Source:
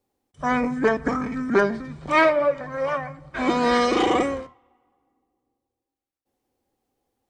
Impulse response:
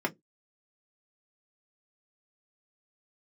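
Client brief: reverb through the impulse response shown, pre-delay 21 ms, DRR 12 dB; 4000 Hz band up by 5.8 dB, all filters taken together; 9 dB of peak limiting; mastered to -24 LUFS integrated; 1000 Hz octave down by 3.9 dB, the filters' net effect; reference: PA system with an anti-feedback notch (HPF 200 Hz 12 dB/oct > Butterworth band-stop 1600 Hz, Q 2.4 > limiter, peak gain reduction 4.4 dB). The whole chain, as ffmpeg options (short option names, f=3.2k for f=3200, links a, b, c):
-filter_complex "[0:a]equalizer=f=1k:t=o:g=-5,equalizer=f=4k:t=o:g=8,alimiter=limit=-16dB:level=0:latency=1,asplit=2[a][b];[1:a]atrim=start_sample=2205,adelay=21[c];[b][c]afir=irnorm=-1:irlink=0,volume=-20dB[d];[a][d]amix=inputs=2:normalize=0,highpass=200,asuperstop=centerf=1600:order=8:qfactor=2.4,volume=4dB,alimiter=limit=-14dB:level=0:latency=1"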